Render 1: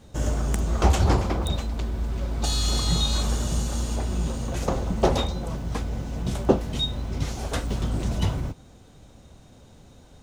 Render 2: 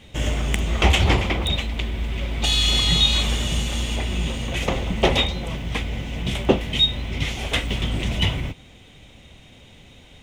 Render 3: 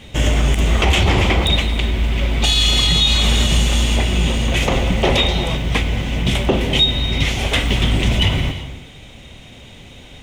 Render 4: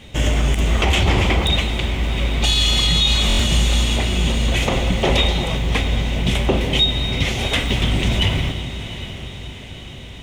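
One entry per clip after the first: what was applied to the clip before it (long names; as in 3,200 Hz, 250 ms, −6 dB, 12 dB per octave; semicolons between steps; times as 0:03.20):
flat-topped bell 2,600 Hz +14 dB 1.1 octaves; level +1.5 dB
reverb whose tail is shaped and stops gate 390 ms flat, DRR 11 dB; boost into a limiter +12 dB; level −4.5 dB
feedback delay with all-pass diffusion 733 ms, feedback 55%, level −12 dB; buffer that repeats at 0:03.28, samples 1,024, times 4; level −2 dB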